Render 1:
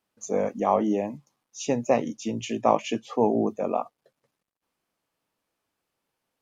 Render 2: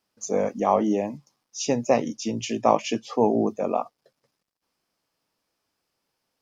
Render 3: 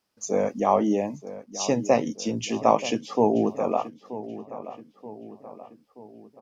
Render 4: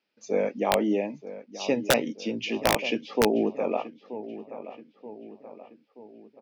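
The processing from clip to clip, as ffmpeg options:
-af "equalizer=f=5100:t=o:w=0.43:g=9,volume=1.19"
-filter_complex "[0:a]asplit=2[s0][s1];[s1]adelay=929,lowpass=f=2300:p=1,volume=0.2,asplit=2[s2][s3];[s3]adelay=929,lowpass=f=2300:p=1,volume=0.53,asplit=2[s4][s5];[s5]adelay=929,lowpass=f=2300:p=1,volume=0.53,asplit=2[s6][s7];[s7]adelay=929,lowpass=f=2300:p=1,volume=0.53,asplit=2[s8][s9];[s9]adelay=929,lowpass=f=2300:p=1,volume=0.53[s10];[s0][s2][s4][s6][s8][s10]amix=inputs=6:normalize=0"
-af "highpass=230,equalizer=f=730:t=q:w=4:g=-5,equalizer=f=1100:t=q:w=4:g=-10,equalizer=f=2400:t=q:w=4:g=6,lowpass=f=4400:w=0.5412,lowpass=f=4400:w=1.3066,aeval=exprs='(mod(3.76*val(0)+1,2)-1)/3.76':c=same"

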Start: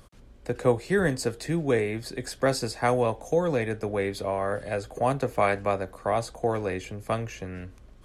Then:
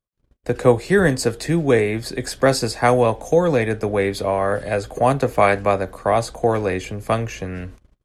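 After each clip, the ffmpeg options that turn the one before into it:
-af "agate=range=0.00631:threshold=0.00501:ratio=16:detection=peak,volume=2.51"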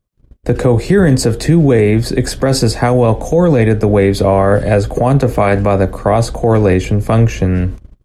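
-af "lowshelf=f=430:g=11.5,alimiter=level_in=2.37:limit=0.891:release=50:level=0:latency=1,volume=0.891"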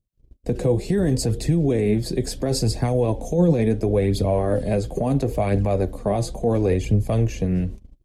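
-af "equalizer=f=1400:w=1.1:g=-12.5,flanger=delay=0.2:depth=6:regen=45:speed=0.72:shape=triangular,volume=0.631"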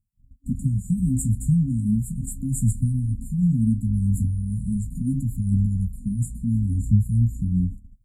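-af "flanger=delay=9.4:depth=9.6:regen=-43:speed=0.37:shape=sinusoidal,afftfilt=real='re*(1-between(b*sr/4096,270,6900))':imag='im*(1-between(b*sr/4096,270,6900))':win_size=4096:overlap=0.75,afftfilt=real='re*(1-between(b*sr/1024,330*pow(1600/330,0.5+0.5*sin(2*PI*0.8*pts/sr))/1.41,330*pow(1600/330,0.5+0.5*sin(2*PI*0.8*pts/sr))*1.41))':imag='im*(1-between(b*sr/1024,330*pow(1600/330,0.5+0.5*sin(2*PI*0.8*pts/sr))/1.41,330*pow(1600/330,0.5+0.5*sin(2*PI*0.8*pts/sr))*1.41))':win_size=1024:overlap=0.75,volume=1.68"

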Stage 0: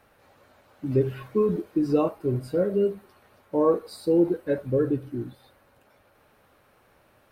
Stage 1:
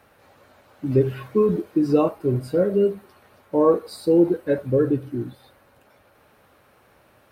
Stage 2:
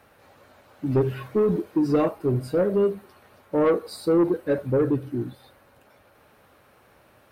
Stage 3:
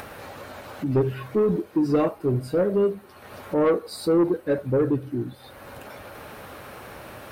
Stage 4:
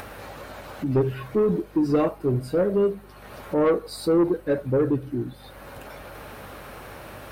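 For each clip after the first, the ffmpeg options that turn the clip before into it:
-af "highpass=44,volume=1.58"
-af "asoftclip=type=tanh:threshold=0.2"
-af "acompressor=mode=upward:threshold=0.0501:ratio=2.5"
-af "aeval=exprs='val(0)+0.00355*(sin(2*PI*50*n/s)+sin(2*PI*2*50*n/s)/2+sin(2*PI*3*50*n/s)/3+sin(2*PI*4*50*n/s)/4+sin(2*PI*5*50*n/s)/5)':c=same"

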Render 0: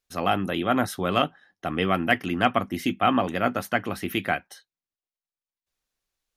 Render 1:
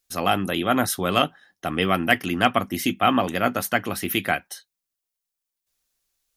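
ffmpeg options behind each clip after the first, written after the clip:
-af "highshelf=f=4900:g=11.5,volume=1.19"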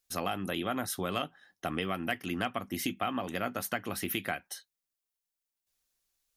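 -af "acompressor=threshold=0.0562:ratio=5,volume=0.596"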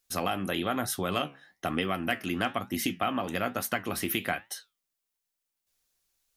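-af "flanger=delay=7.4:depth=7.6:regen=76:speed=1.1:shape=triangular,volume=2.51"

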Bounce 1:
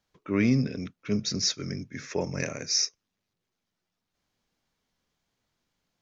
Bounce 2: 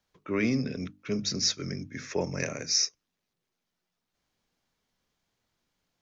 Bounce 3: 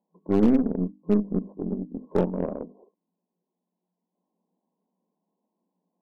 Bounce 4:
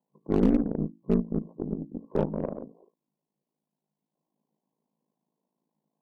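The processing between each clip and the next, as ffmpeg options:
-filter_complex "[0:a]bandreject=f=50:t=h:w=6,bandreject=f=100:t=h:w=6,bandreject=f=150:t=h:w=6,bandreject=f=200:t=h:w=6,bandreject=f=250:t=h:w=6,bandreject=f=300:t=h:w=6,acrossover=split=240|3300[s0][s1][s2];[s0]alimiter=level_in=1.88:limit=0.0631:level=0:latency=1,volume=0.531[s3];[s3][s1][s2]amix=inputs=3:normalize=0"
-af "aemphasis=mode=reproduction:type=bsi,afftfilt=real='re*between(b*sr/4096,170,1100)':imag='im*between(b*sr/4096,170,1100)':win_size=4096:overlap=0.75,aeval=exprs='0.133*(cos(1*acos(clip(val(0)/0.133,-1,1)))-cos(1*PI/2))+0.0299*(cos(2*acos(clip(val(0)/0.133,-1,1)))-cos(2*PI/2))+0.00299*(cos(6*acos(clip(val(0)/0.133,-1,1)))-cos(6*PI/2))+0.00422*(cos(7*acos(clip(val(0)/0.133,-1,1)))-cos(7*PI/2))':c=same,volume=1.58"
-af "aeval=exprs='val(0)*sin(2*PI*27*n/s)':c=same"

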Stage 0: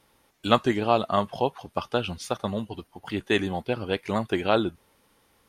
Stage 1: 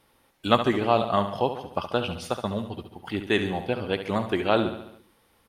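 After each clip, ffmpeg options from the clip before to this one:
-filter_complex "[0:a]equalizer=f=6600:t=o:w=0.62:g=-5,asplit=2[s0][s1];[s1]aecho=0:1:70|140|210|280|350|420:0.316|0.174|0.0957|0.0526|0.0289|0.0159[s2];[s0][s2]amix=inputs=2:normalize=0"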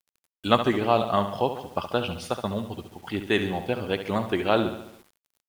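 -af "acrusher=bits=8:mix=0:aa=0.000001"

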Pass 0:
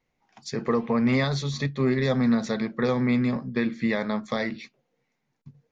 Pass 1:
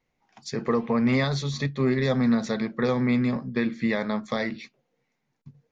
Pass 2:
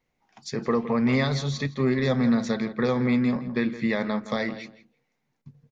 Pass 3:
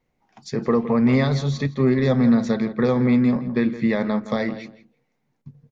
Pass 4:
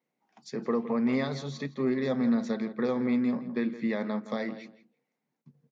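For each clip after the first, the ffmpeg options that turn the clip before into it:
-af anull
-filter_complex "[0:a]asplit=2[s0][s1];[s1]adelay=166,lowpass=f=2400:p=1,volume=0.237,asplit=2[s2][s3];[s3]adelay=166,lowpass=f=2400:p=1,volume=0.19[s4];[s0][s2][s4]amix=inputs=3:normalize=0"
-af "tiltshelf=f=1100:g=3.5,volume=1.26"
-af "highpass=f=170:w=0.5412,highpass=f=170:w=1.3066,volume=0.376"

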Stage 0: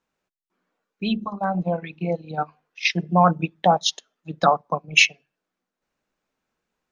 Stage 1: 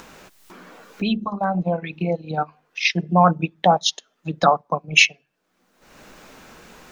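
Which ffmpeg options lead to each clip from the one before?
-af "acompressor=mode=upward:threshold=0.0891:ratio=2.5,volume=1.19"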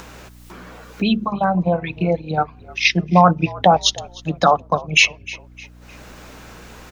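-filter_complex "[0:a]aeval=exprs='val(0)+0.00447*(sin(2*PI*60*n/s)+sin(2*PI*2*60*n/s)/2+sin(2*PI*3*60*n/s)/3+sin(2*PI*4*60*n/s)/4+sin(2*PI*5*60*n/s)/5)':c=same,asplit=4[s0][s1][s2][s3];[s1]adelay=305,afreqshift=-59,volume=0.0794[s4];[s2]adelay=610,afreqshift=-118,volume=0.0309[s5];[s3]adelay=915,afreqshift=-177,volume=0.012[s6];[s0][s4][s5][s6]amix=inputs=4:normalize=0,alimiter=level_in=1.78:limit=0.891:release=50:level=0:latency=1,volume=0.891"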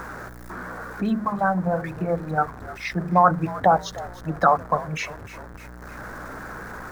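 -af "aeval=exprs='val(0)+0.5*0.0447*sgn(val(0))':c=same,highshelf=f=2100:t=q:w=3:g=-10,bandreject=f=58.53:t=h:w=4,bandreject=f=117.06:t=h:w=4,bandreject=f=175.59:t=h:w=4,bandreject=f=234.12:t=h:w=4,bandreject=f=292.65:t=h:w=4,bandreject=f=351.18:t=h:w=4,bandreject=f=409.71:t=h:w=4,bandreject=f=468.24:t=h:w=4,bandreject=f=526.77:t=h:w=4,volume=0.501"

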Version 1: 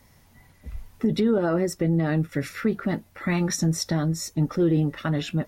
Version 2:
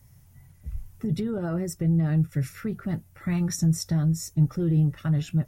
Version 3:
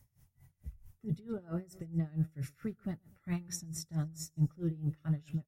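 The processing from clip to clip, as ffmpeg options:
-af "equalizer=f=125:t=o:w=1:g=9,equalizer=f=250:t=o:w=1:g=-10,equalizer=f=500:t=o:w=1:g=-8,equalizer=f=1000:t=o:w=1:g=-8,equalizer=f=2000:t=o:w=1:g=-7,equalizer=f=4000:t=o:w=1:g=-10,volume=1.12"
-af "aecho=1:1:125|250|375:0.112|0.037|0.0122,aeval=exprs='val(0)*pow(10,-22*(0.5-0.5*cos(2*PI*4.5*n/s))/20)':c=same,volume=0.473"

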